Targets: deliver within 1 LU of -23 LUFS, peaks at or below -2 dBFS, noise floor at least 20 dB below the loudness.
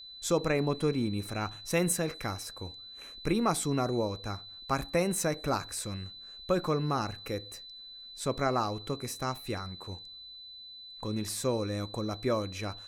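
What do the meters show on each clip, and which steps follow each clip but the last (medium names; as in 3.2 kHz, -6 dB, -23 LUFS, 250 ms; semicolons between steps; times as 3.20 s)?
steady tone 4 kHz; tone level -45 dBFS; loudness -32.0 LUFS; peak level -14.5 dBFS; loudness target -23.0 LUFS
-> band-stop 4 kHz, Q 30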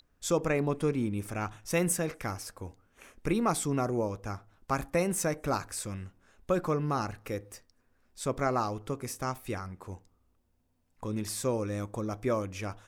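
steady tone not found; loudness -32.0 LUFS; peak level -15.0 dBFS; loudness target -23.0 LUFS
-> trim +9 dB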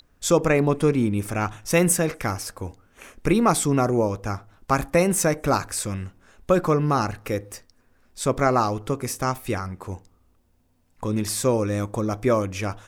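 loudness -23.5 LUFS; peak level -6.0 dBFS; noise floor -62 dBFS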